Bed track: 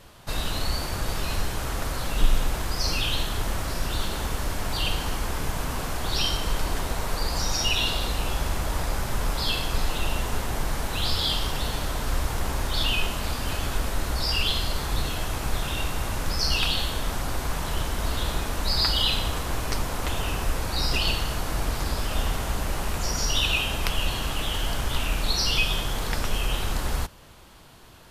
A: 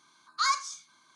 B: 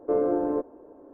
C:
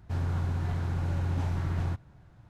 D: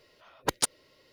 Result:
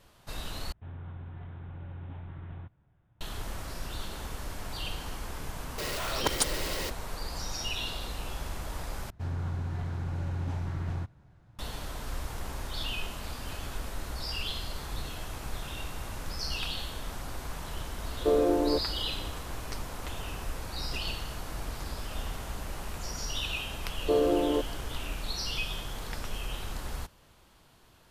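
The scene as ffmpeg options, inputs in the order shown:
-filter_complex "[3:a]asplit=2[a][b];[2:a]asplit=2[c][d];[0:a]volume=-10dB[e];[a]aresample=8000,aresample=44100[f];[4:a]aeval=exprs='val(0)+0.5*0.0473*sgn(val(0))':c=same[g];[e]asplit=3[h][i][j];[h]atrim=end=0.724[k];[f]atrim=end=2.49,asetpts=PTS-STARTPTS,volume=-12.5dB[l];[i]atrim=start=3.206:end=9.104[m];[b]atrim=end=2.49,asetpts=PTS-STARTPTS,volume=-3.5dB[n];[j]atrim=start=11.586[o];[g]atrim=end=1.12,asetpts=PTS-STARTPTS,volume=-3dB,afade=t=in:d=0.004:c=hsin,afade=t=out:st=1.116:d=0.004:c=hsin,adelay=5780[p];[c]atrim=end=1.13,asetpts=PTS-STARTPTS,volume=-0.5dB,afade=t=in:d=0.004:c=hsin,afade=t=out:st=1.126:d=0.004:c=hsin,adelay=18170[q];[d]atrim=end=1.13,asetpts=PTS-STARTPTS,volume=-1dB,afade=t=in:d=0.004:c=hsin,afade=t=out:st=1.126:d=0.004:c=hsin,adelay=24000[r];[k][l]acrossfade=d=0.004:c1=hsin:c2=hsin[s];[s][m]acrossfade=d=0.004:c1=hsin:c2=hsin[t];[t][n]acrossfade=d=0.004:c1=hsin:c2=hsin[u];[u][o]acrossfade=d=0.004:c1=hsin:c2=hsin[v];[v][p][q][r]amix=inputs=4:normalize=0"

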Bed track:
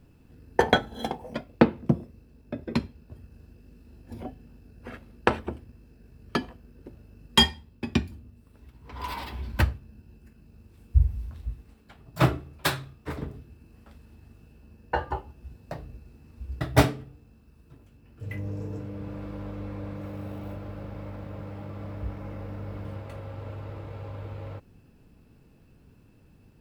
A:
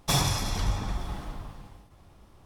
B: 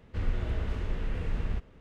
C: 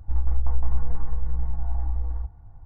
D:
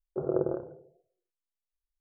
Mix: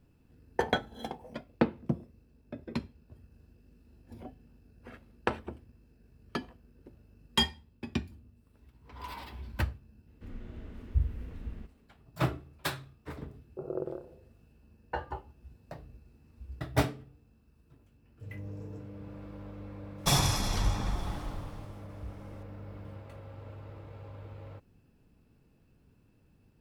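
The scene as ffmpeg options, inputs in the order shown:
-filter_complex "[0:a]volume=-8dB[a];[2:a]equalizer=f=250:w=1.5:g=11.5,atrim=end=1.8,asetpts=PTS-STARTPTS,volume=-15.5dB,afade=t=in:d=0.004:c=hsin,afade=t=out:st=1.796:d=0.004:c=hsin,adelay=10070[b];[4:a]atrim=end=2,asetpts=PTS-STARTPTS,volume=-7.5dB,afade=t=in:d=0.004:c=hsin,afade=t=out:st=1.996:d=0.004:c=hsin,adelay=13410[c];[1:a]atrim=end=2.45,asetpts=PTS-STARTPTS,volume=-1dB,afade=t=in:d=0.004:c=hsin,afade=t=out:st=2.446:d=0.004:c=hsin,adelay=19980[d];[a][b][c][d]amix=inputs=4:normalize=0"

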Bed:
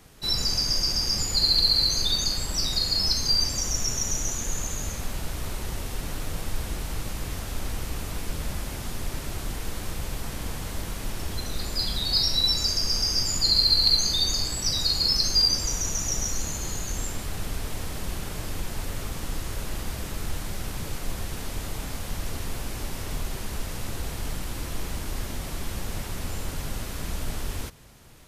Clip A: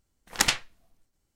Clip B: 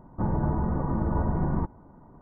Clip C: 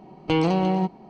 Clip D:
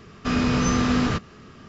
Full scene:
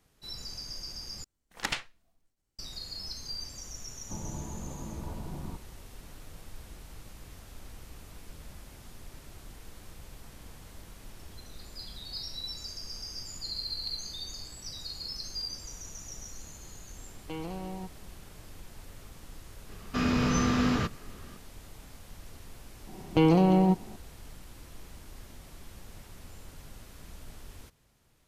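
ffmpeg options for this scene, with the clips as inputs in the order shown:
-filter_complex "[3:a]asplit=2[a][b];[0:a]volume=-16dB[c];[1:a]acrossover=split=4400[d][e];[e]acompressor=threshold=-29dB:ratio=4:attack=1:release=60[f];[d][f]amix=inputs=2:normalize=0[g];[2:a]lowpass=1.3k[h];[b]tiltshelf=f=640:g=3.5[i];[c]asplit=2[j][k];[j]atrim=end=1.244[l];[g]atrim=end=1.35,asetpts=PTS-STARTPTS,volume=-7dB[m];[k]atrim=start=2.586[n];[h]atrim=end=2.21,asetpts=PTS-STARTPTS,volume=-13.5dB,afade=t=in:d=0.004:c=hsin,afade=t=out:st=2.206:d=0.004:c=hsin,adelay=3910[o];[a]atrim=end=1.09,asetpts=PTS-STARTPTS,volume=-17.5dB,afade=t=in:d=0.004:c=hsin,afade=t=out:st=1.086:d=0.004:c=hsin,adelay=749700S[p];[4:a]atrim=end=1.68,asetpts=PTS-STARTPTS,volume=-5dB,afade=t=in:d=0.004:c=hsin,afade=t=out:st=1.676:d=0.004:c=hsin,adelay=19690[q];[i]atrim=end=1.09,asetpts=PTS-STARTPTS,volume=-2dB,afade=t=in:d=0.004:c=hsin,afade=t=out:st=1.086:d=0.004:c=hsin,adelay=22870[r];[l][m]acrossfade=d=0.004:c1=hsin:c2=hsin[s];[s][n]acrossfade=d=0.004:c1=hsin:c2=hsin[t];[t][o][p][q][r]amix=inputs=5:normalize=0"

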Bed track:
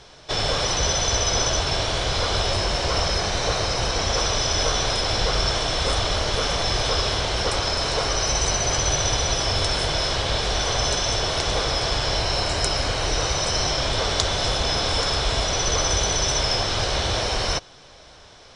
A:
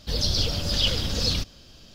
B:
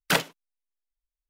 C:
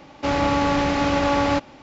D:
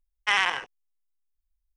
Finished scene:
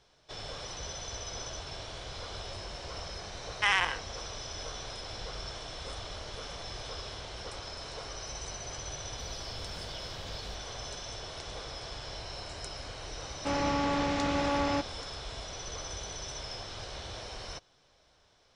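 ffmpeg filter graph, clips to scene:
-filter_complex "[0:a]volume=-18.5dB[a];[1:a]acompressor=threshold=-32dB:ratio=6:attack=3.2:release=140:knee=1:detection=peak[b];[3:a]asoftclip=type=tanh:threshold=-10.5dB[c];[4:a]atrim=end=1.76,asetpts=PTS-STARTPTS,volume=-3.5dB,afade=t=in:d=0.004:c=hsin,afade=t=out:st=1.756:d=0.004:c=hsin,adelay=3350[d];[b]atrim=end=1.94,asetpts=PTS-STARTPTS,volume=-11.5dB,afade=t=in:d=0.004:c=hsin,afade=t=out:st=1.936:d=0.004:c=hsin,adelay=9120[e];[c]atrim=end=1.82,asetpts=PTS-STARTPTS,volume=-8.5dB,afade=t=in:d=0.004:c=hsin,afade=t=out:st=1.816:d=0.004:c=hsin,adelay=13220[f];[a][d][e][f]amix=inputs=4:normalize=0"

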